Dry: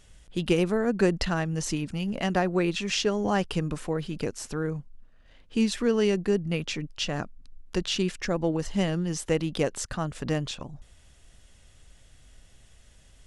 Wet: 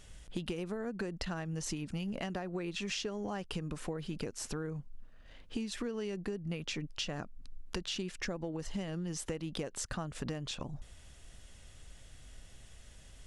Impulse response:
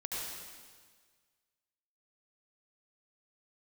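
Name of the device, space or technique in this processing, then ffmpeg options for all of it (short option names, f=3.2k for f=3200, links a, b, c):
serial compression, leveller first: -af "acompressor=threshold=-26dB:ratio=2.5,acompressor=threshold=-36dB:ratio=6,volume=1dB"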